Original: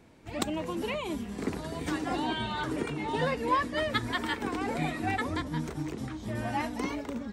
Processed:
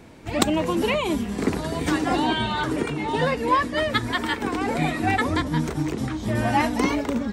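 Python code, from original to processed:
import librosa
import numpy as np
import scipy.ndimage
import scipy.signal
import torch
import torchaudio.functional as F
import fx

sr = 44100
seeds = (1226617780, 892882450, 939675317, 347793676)

y = fx.rider(x, sr, range_db=4, speed_s=2.0)
y = y * 10.0 ** (8.0 / 20.0)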